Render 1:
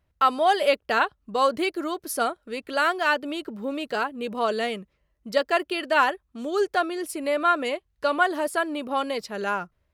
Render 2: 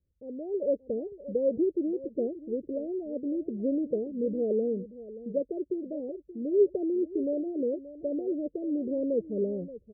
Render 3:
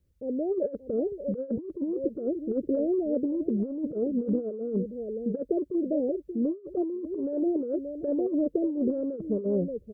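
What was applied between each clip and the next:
AGC gain up to 12.5 dB; steep low-pass 540 Hz 72 dB/oct; echo 0.578 s -15.5 dB; gain -7 dB
negative-ratio compressor -32 dBFS, ratio -0.5; gain +5 dB

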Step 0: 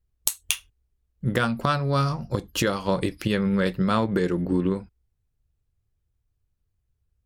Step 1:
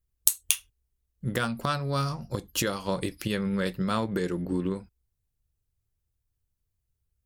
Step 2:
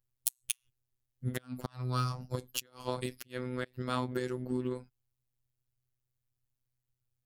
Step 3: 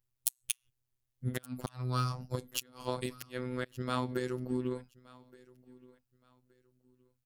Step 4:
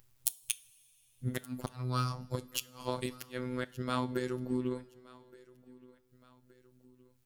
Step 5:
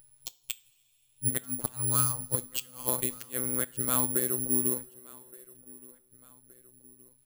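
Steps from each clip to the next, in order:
high shelf 5600 Hz +10.5 dB; gain -5.5 dB
flipped gate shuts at -15 dBFS, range -31 dB; robotiser 126 Hz; gain -2.5 dB
feedback echo 1.171 s, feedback 27%, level -23 dB
upward compressor, threshold -52 dBFS; two-slope reverb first 0.32 s, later 3.7 s, from -17 dB, DRR 15.5 dB
careless resampling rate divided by 4×, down filtered, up zero stuff

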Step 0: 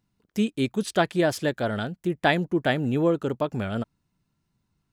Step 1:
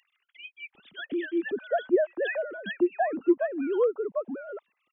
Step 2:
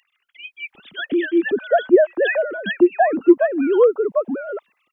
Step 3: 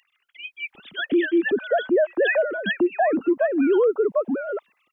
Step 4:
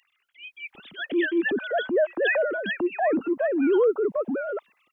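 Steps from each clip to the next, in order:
sine-wave speech; upward compressor, threshold -41 dBFS; bands offset in time highs, lows 0.75 s, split 1500 Hz; gain -2.5 dB
AGC gain up to 6 dB; gain +4.5 dB
limiter -13 dBFS, peak gain reduction 11.5 dB
transient shaper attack -8 dB, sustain +2 dB; gain -1 dB

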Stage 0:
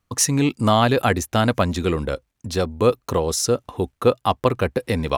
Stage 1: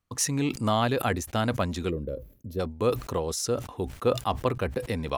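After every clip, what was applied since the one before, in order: spectral gain 1.9–2.6, 640–11000 Hz -19 dB; sustainer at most 130 dB/s; gain -8 dB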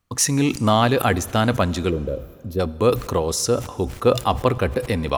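plate-style reverb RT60 2.5 s, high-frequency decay 0.8×, DRR 18 dB; gain +7.5 dB

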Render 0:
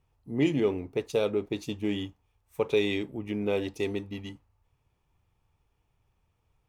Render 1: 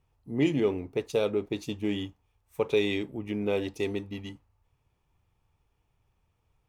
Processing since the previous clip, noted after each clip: nothing audible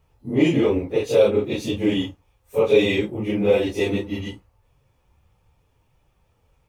phase scrambler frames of 0.1 s; bell 530 Hz +8 dB 0.22 oct; in parallel at -1 dB: limiter -20.5 dBFS, peak gain reduction 10 dB; on the sum: gain +3.5 dB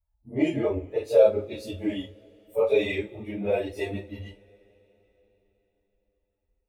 per-bin expansion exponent 1.5; thirty-one-band EQ 160 Hz -11 dB, 250 Hz -6 dB, 630 Hz +11 dB, 1000 Hz -4 dB, 3150 Hz -7 dB, 6300 Hz -8 dB; on a send at -4.5 dB: reverb, pre-delay 3 ms; on the sum: gain -4.5 dB

